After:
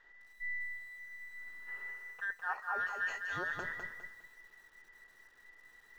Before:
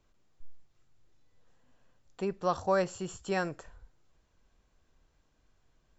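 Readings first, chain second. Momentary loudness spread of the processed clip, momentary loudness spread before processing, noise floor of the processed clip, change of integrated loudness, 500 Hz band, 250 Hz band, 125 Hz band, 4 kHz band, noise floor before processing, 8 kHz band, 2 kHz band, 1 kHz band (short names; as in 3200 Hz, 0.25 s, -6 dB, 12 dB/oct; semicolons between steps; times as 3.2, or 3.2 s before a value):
22 LU, 10 LU, -63 dBFS, -7.0 dB, -18.5 dB, -18.0 dB, -15.0 dB, -6.0 dB, -72 dBFS, n/a, +7.5 dB, -5.0 dB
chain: band inversion scrambler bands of 2000 Hz; spectral gain 1.68–3.19, 380–3000 Hz +9 dB; reverse; compressor 10:1, threshold -42 dBFS, peak gain reduction 27.5 dB; reverse; air absorption 170 m; lo-fi delay 0.204 s, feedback 35%, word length 12-bit, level -5 dB; gain +7.5 dB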